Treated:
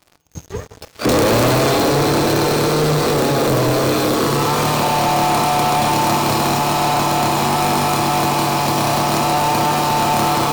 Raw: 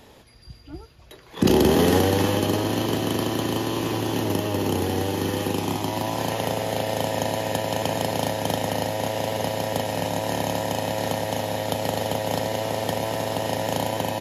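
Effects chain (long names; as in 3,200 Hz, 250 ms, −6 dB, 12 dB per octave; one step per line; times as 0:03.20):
wrong playback speed 33 rpm record played at 45 rpm
dynamic equaliser 110 Hz, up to +4 dB, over −44 dBFS, Q 2.2
feedback delay network reverb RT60 1.7 s, low-frequency decay 0.85×, high-frequency decay 0.85×, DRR 4.5 dB
leveller curve on the samples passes 5
level −7 dB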